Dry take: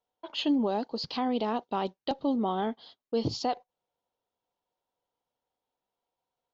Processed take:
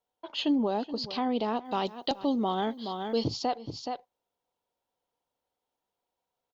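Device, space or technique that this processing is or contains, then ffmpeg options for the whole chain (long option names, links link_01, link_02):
ducked delay: -filter_complex "[0:a]asplit=3[link_01][link_02][link_03];[link_02]adelay=424,volume=-5.5dB[link_04];[link_03]apad=whole_len=306721[link_05];[link_04][link_05]sidechaincompress=threshold=-43dB:ratio=12:attack=8.3:release=160[link_06];[link_01][link_06]amix=inputs=2:normalize=0,asettb=1/sr,asplit=3[link_07][link_08][link_09];[link_07]atrim=end=1.654[link_10];[link_08]atrim=start=1.65:end=3.24,asetpts=PTS-STARTPTS,afade=type=in:duration=0.004:curve=qsin,afade=type=out:start_time=1.586:duration=0.004:curve=qsin,aemphasis=mode=production:type=75kf[link_11];[link_09]atrim=start=3.236[link_12];[link_10][link_11]acrossfade=duration=0.004:curve1=hsin:curve2=qsin[link_13];[link_13][link_12]acrossfade=duration=0.004:curve1=qsin:curve2=hsin"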